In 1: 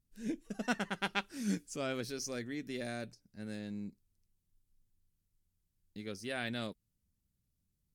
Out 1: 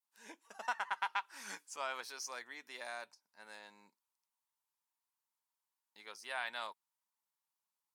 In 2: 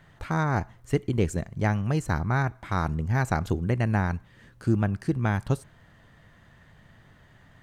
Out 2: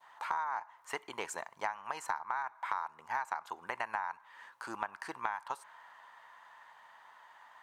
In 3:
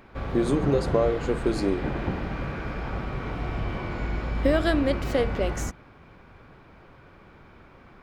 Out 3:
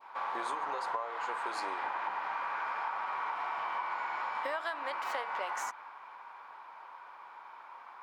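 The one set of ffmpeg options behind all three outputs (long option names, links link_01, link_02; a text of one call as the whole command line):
ffmpeg -i in.wav -af "highpass=frequency=940:width_type=q:width=6.2,adynamicequalizer=threshold=0.02:dfrequency=1700:dqfactor=0.82:tfrequency=1700:tqfactor=0.82:attack=5:release=100:ratio=0.375:range=2.5:mode=boostabove:tftype=bell,acompressor=threshold=-29dB:ratio=12,volume=-3dB" out.wav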